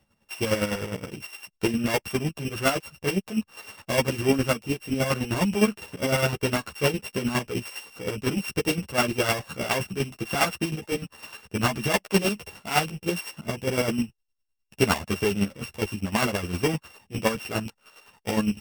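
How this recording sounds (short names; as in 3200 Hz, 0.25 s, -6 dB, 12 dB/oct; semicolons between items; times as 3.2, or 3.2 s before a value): a buzz of ramps at a fixed pitch in blocks of 16 samples; chopped level 9.8 Hz, depth 60%, duty 30%; a shimmering, thickened sound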